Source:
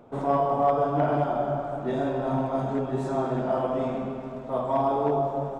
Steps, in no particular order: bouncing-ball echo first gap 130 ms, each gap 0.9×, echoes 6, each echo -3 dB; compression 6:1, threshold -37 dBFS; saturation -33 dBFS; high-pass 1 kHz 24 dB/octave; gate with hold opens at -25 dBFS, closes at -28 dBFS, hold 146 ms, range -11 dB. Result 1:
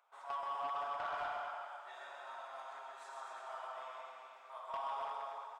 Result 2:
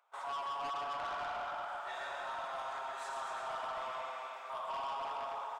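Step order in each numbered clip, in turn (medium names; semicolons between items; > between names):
high-pass > gate with hold > compression > bouncing-ball echo > saturation; bouncing-ball echo > gate with hold > high-pass > saturation > compression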